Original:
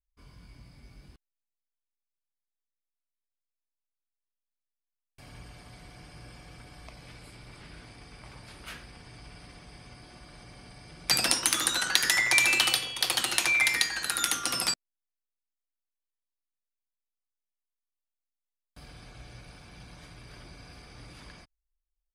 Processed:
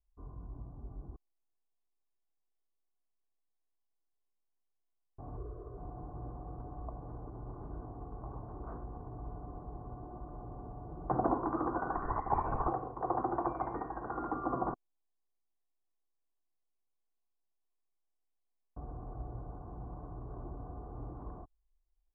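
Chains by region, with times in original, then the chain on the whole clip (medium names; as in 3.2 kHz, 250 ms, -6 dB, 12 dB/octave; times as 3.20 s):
5.37–5.78 s: peaking EQ 400 Hz +9.5 dB 0.53 oct + static phaser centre 810 Hz, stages 6
11.96–12.68 s: high-pass 490 Hz + LPC vocoder at 8 kHz whisper
whole clip: steep low-pass 1.1 kHz 48 dB/octave; comb 2.7 ms, depth 40%; trim +5 dB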